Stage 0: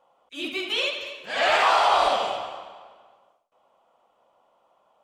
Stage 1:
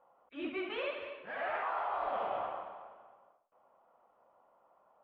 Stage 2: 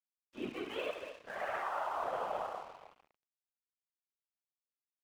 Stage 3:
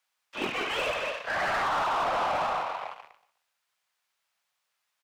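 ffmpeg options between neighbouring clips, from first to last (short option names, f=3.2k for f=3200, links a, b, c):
-af "lowpass=f=1.8k:w=0.5412,lowpass=f=1.8k:w=1.3066,aemphasis=mode=production:type=75fm,areverse,acompressor=threshold=-29dB:ratio=16,areverse,volume=-3dB"
-af "bandreject=f=2.3k:w=14,afftfilt=real='hypot(re,im)*cos(2*PI*random(0))':imag='hypot(re,im)*sin(2*PI*random(1))':win_size=512:overlap=0.75,aeval=exprs='sgn(val(0))*max(abs(val(0))-0.001,0)':c=same,volume=5.5dB"
-filter_complex "[0:a]acrossover=split=190|500|1900[a][b][c][d];[b]acrusher=bits=5:mix=0:aa=0.000001[e];[a][e][c][d]amix=inputs=4:normalize=0,asplit=2[f][g];[g]highpass=f=720:p=1,volume=27dB,asoftclip=type=tanh:threshold=-24dB[h];[f][h]amix=inputs=2:normalize=0,lowpass=f=2.5k:p=1,volume=-6dB,aecho=1:1:124|248|372:0.126|0.0504|0.0201,volume=3.5dB"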